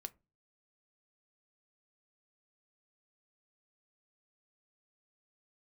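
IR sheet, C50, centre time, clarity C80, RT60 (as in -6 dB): 25.0 dB, 2 ms, 31.5 dB, 0.30 s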